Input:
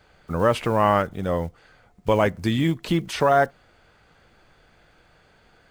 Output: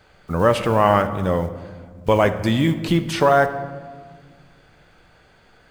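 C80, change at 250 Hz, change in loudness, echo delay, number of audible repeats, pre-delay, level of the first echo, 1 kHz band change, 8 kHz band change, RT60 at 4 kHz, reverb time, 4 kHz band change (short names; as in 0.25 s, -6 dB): 13.5 dB, +3.5 dB, +3.0 dB, none, none, 5 ms, none, +3.0 dB, +3.0 dB, 0.90 s, 1.6 s, +3.5 dB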